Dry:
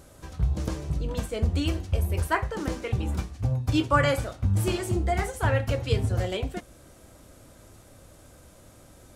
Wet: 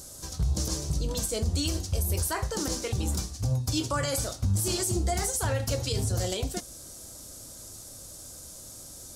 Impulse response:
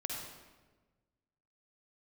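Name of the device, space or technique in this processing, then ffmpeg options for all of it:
over-bright horn tweeter: -af "highshelf=f=3600:t=q:w=1.5:g=13.5,alimiter=limit=0.119:level=0:latency=1:release=59"

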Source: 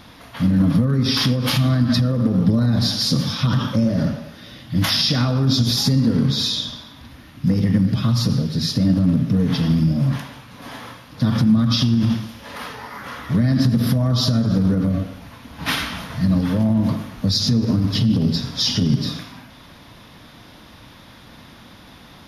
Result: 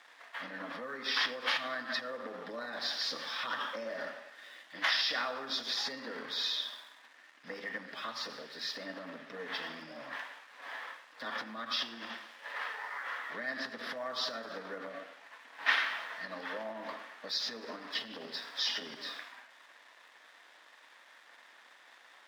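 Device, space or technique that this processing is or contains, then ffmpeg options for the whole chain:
pocket radio on a weak battery: -af "highpass=370,lowpass=3500,aeval=exprs='sgn(val(0))*max(abs(val(0))-0.00251,0)':c=same,highpass=590,equalizer=f=1800:t=o:w=0.4:g=8.5,volume=0.447"

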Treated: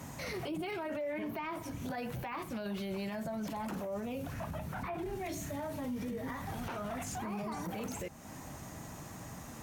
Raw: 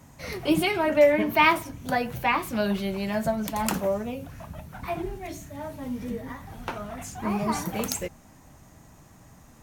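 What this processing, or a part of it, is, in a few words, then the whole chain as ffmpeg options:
podcast mastering chain: -filter_complex "[0:a]asettb=1/sr,asplit=3[s0][s1][s2];[s0]atrim=end=4.334[s3];[s1]atrim=start=4.33:end=4.98,asetpts=PTS-STARTPTS,afade=t=in:d=0.004:c=qsin,afade=t=out:st=0.646:d=0.004:c=qsin,acrossover=split=2600[s4][s5];[s5]acompressor=threshold=0.00126:ratio=4:attack=1:release=60[s6];[s4][s6]amix=inputs=2:normalize=0[s7];[s2]atrim=start=4.976[s8];[s3][s7]acrossfade=d=0.004:c1=hsin:c2=qsin[s9];[s9][s8]acrossfade=d=0.004:c1=qsin:c2=hsin,highpass=f=100:p=1,deesser=0.95,acompressor=threshold=0.00708:ratio=2.5,alimiter=level_in=5.31:limit=0.0631:level=0:latency=1:release=12,volume=0.188,volume=2.37" -ar 44100 -c:a libmp3lame -b:a 112k

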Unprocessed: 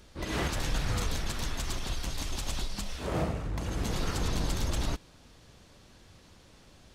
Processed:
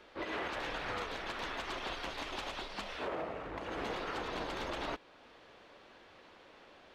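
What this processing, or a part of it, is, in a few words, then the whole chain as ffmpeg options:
DJ mixer with the lows and highs turned down: -filter_complex "[0:a]acrossover=split=320 3400:gain=0.0794 1 0.0708[s0][s1][s2];[s0][s1][s2]amix=inputs=3:normalize=0,alimiter=level_in=2.82:limit=0.0631:level=0:latency=1:release=332,volume=0.355,volume=1.68"

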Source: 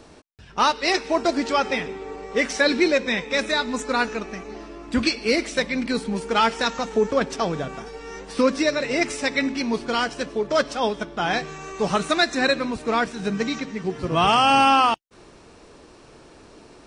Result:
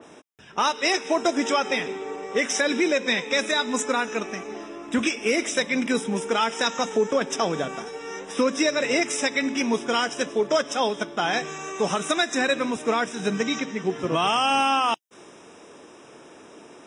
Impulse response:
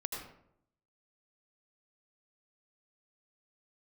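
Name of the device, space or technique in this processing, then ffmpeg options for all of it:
PA system with an anti-feedback notch: -filter_complex "[0:a]highpass=200,asuperstop=centerf=4400:order=20:qfactor=4.3,alimiter=limit=0.188:level=0:latency=1:release=162,asettb=1/sr,asplit=3[s0][s1][s2];[s0]atrim=end=13.434[s3];[s1]atrim=start=13.43:end=14.14,asetpts=PTS-STARTPTS,afade=t=in:d=0.004:c=qsin,afade=t=out:st=0.706:d=0.004:c=qsin,lowpass=7500[s4];[s2]atrim=start=14.136[s5];[s3][s4]acrossfade=d=0.004:c1=hsin:c2=qsin[s6];[s6][s5]acrossfade=d=0.004:c1=qsin:c2=hsin,adynamicequalizer=threshold=0.0112:dfrequency=3300:dqfactor=0.7:tfrequency=3300:tqfactor=0.7:attack=5:release=100:ratio=0.375:range=2.5:mode=boostabove:tftype=highshelf,volume=1.26"

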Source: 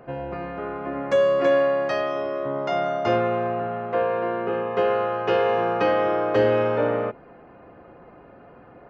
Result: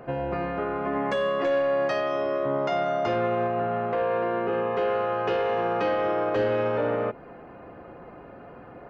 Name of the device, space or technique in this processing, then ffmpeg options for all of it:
soft clipper into limiter: -filter_complex "[0:a]asettb=1/sr,asplit=3[s0][s1][s2];[s0]atrim=end=0.864[s3];[s1]atrim=start=0.86:end=1.44,asetpts=PTS-STARTPTS,afade=t=in:d=0.004:c=qsin,afade=t=out:st=0.576:d=0.004:c=qsin,aecho=1:1:4.7:0.8,atrim=end_sample=25578[s4];[s2]atrim=start=1.436[s5];[s3][s4]acrossfade=d=0.004:c1=hsin:c2=qsin[s6];[s6][s5]acrossfade=d=0.004:c1=qsin:c2=hsin,asoftclip=type=tanh:threshold=0.224,alimiter=limit=0.0841:level=0:latency=1:release=169,volume=1.41"

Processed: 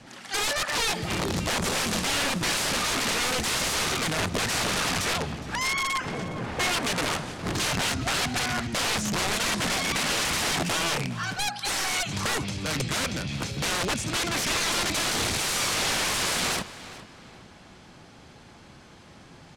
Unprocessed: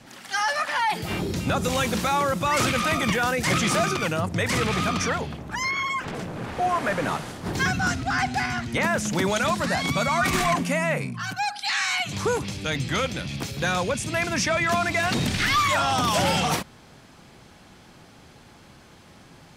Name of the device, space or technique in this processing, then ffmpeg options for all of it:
overflowing digital effects unit: -filter_complex "[0:a]asettb=1/sr,asplit=3[s0][s1][s2];[s0]atrim=end=14.724[s3];[s1]atrim=start=14.72:end=15.6,asetpts=PTS-STARTPTS,afade=t=in:d=0.004:c=qsin,afade=t=out:st=0.876:d=0.004:c=qsin,equalizer=f=5300:w=0.58:g=3.5[s4];[s2]atrim=start=15.596[s5];[s3][s4]acrossfade=d=0.004:c1=hsin:c2=qsin[s6];[s6][s5]acrossfade=d=0.004:c1=qsin:c2=hsin,aeval=exprs='(mod(10.6*val(0)+1,2)-1)/10.6':c=same,lowpass=9300,asplit=2[s7][s8];[s8]adelay=412,lowpass=f=4800:p=1,volume=0.178,asplit=2[s9][s10];[s10]adelay=412,lowpass=f=4800:p=1,volume=0.35,asplit=2[s11][s12];[s12]adelay=412,lowpass=f=4800:p=1,volume=0.35[s13];[s7][s9][s11][s13]amix=inputs=4:normalize=0"

